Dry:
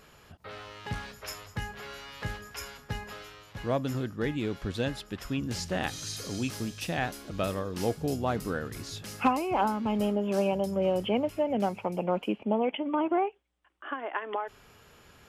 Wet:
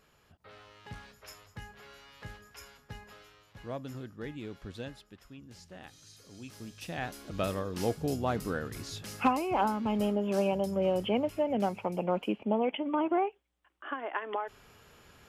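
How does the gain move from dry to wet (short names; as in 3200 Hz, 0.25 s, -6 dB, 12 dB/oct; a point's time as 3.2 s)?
4.79 s -10 dB
5.3 s -18 dB
6.25 s -18 dB
6.68 s -10 dB
7.37 s -1.5 dB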